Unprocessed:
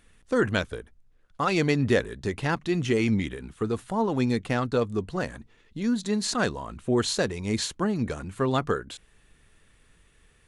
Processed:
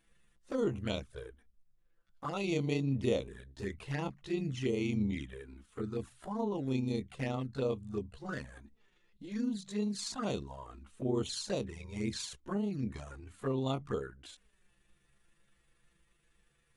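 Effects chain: granular stretch 1.6×, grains 79 ms; touch-sensitive flanger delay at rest 6.2 ms, full sweep at -22 dBFS; trim -7 dB

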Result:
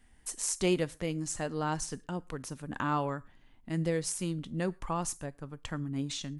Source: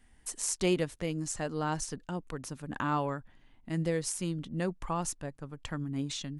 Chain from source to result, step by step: on a send: pre-emphasis filter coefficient 0.9 + reverberation, pre-delay 7 ms, DRR 19.5 dB

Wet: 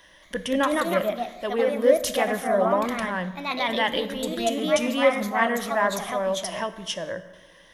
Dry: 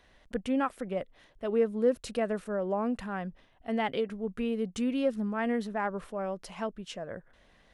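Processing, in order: rippled EQ curve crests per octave 1.2, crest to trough 10 dB; ever faster or slower copies 225 ms, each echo +2 st, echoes 2; tilt EQ +2 dB/octave; plate-style reverb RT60 1.2 s, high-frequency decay 0.7×, DRR 10.5 dB; trim +6.5 dB

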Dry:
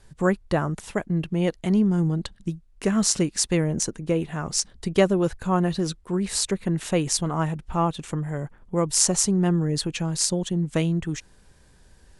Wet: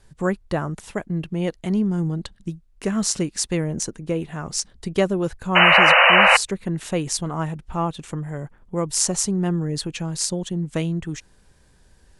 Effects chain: painted sound noise, 5.55–6.37 s, 490–3000 Hz -12 dBFS; trim -1 dB

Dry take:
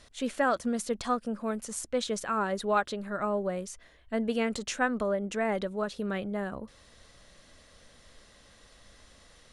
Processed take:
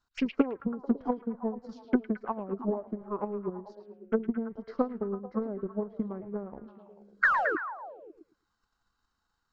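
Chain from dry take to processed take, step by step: low-pass that closes with the level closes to 630 Hz, closed at -26 dBFS; gate -45 dBFS, range -15 dB; bass shelf 260 Hz -7.5 dB; painted sound fall, 7.23–7.56 s, 370–2000 Hz -23 dBFS; touch-sensitive phaser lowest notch 560 Hz, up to 3.5 kHz, full sweep at -37 dBFS; transient shaper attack +12 dB, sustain -5 dB; formant shift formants -5 st; distance through air 72 m; repeats whose band climbs or falls 110 ms, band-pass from 3 kHz, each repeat -0.7 oct, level -4 dB; trim -2.5 dB

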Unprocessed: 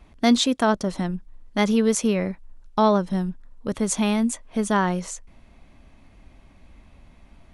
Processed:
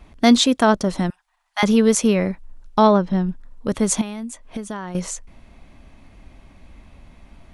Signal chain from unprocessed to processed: 1.10–1.63 s: elliptic high-pass 730 Hz, stop band 40 dB; 2.87–3.29 s: distance through air 140 m; 4.01–4.95 s: compression 16:1, threshold -31 dBFS, peak gain reduction 16 dB; trim +4.5 dB

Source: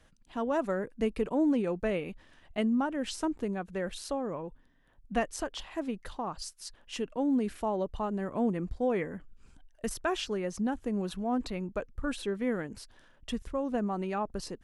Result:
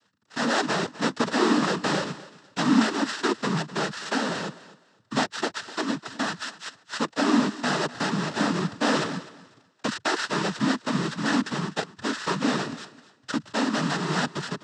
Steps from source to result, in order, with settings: sorted samples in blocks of 32 samples; waveshaping leveller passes 2; fifteen-band graphic EQ 250 Hz +4 dB, 1 kHz +4 dB, 4 kHz +5 dB; noise-vocoded speech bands 12; thinning echo 252 ms, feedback 23%, high-pass 150 Hz, level -17.5 dB; trim -1.5 dB

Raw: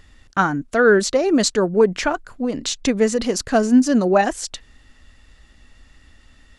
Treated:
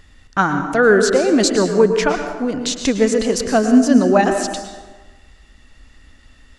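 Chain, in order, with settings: plate-style reverb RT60 1.3 s, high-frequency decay 0.6×, pre-delay 95 ms, DRR 6 dB; trim +1.5 dB

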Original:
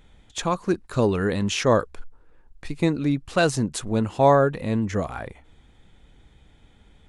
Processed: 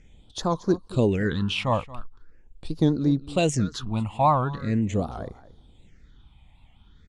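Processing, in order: resonant low-pass 7.4 kHz, resonance Q 1.8; on a send: delay 228 ms -18 dB; on the sum: phase shifter stages 6, 0.42 Hz, lowest notch 400–2500 Hz; treble shelf 5.4 kHz -5 dB; warped record 78 rpm, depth 160 cents

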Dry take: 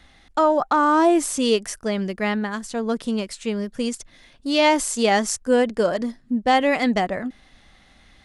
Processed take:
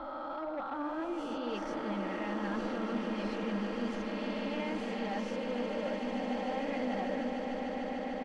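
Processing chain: reverse spectral sustain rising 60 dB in 1.36 s; comb 3.7 ms, depth 60%; reverse; compression 10:1, threshold -23 dBFS, peak gain reduction 14 dB; reverse; flange 1.8 Hz, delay 2.7 ms, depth 8.2 ms, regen +44%; hard clipper -25 dBFS, distortion -17 dB; distance through air 260 m; on a send: echo with a slow build-up 149 ms, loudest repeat 8, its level -10 dB; on the sum: trim -6.5 dB

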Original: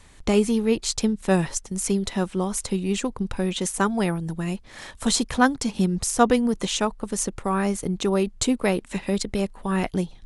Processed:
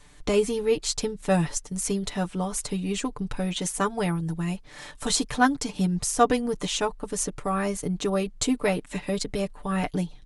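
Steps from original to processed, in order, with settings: comb 6.8 ms, depth 72%; trim -3.5 dB

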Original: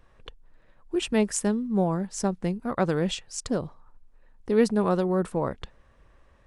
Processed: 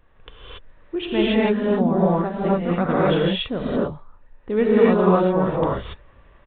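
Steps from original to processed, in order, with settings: gated-style reverb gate 310 ms rising, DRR -7.5 dB; resampled via 8 kHz

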